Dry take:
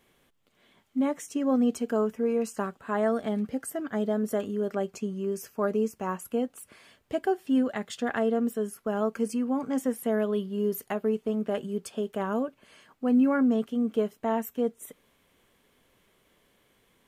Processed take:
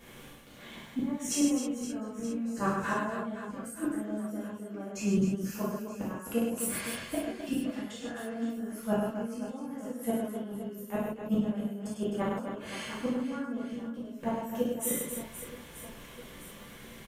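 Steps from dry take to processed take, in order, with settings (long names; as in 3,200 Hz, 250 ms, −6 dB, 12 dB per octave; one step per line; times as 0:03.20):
low-shelf EQ 290 Hz +4 dB
in parallel at +1.5 dB: downward compressor 8 to 1, threshold −34 dBFS, peak gain reduction 17 dB
on the sum: volume swells 101 ms
gate with flip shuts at −23 dBFS, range −24 dB
on a send: reverse bouncing-ball delay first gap 100 ms, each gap 1.6×, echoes 5
on the sum: reverb whose tail is shaped and stops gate 90 ms flat, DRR −7 dB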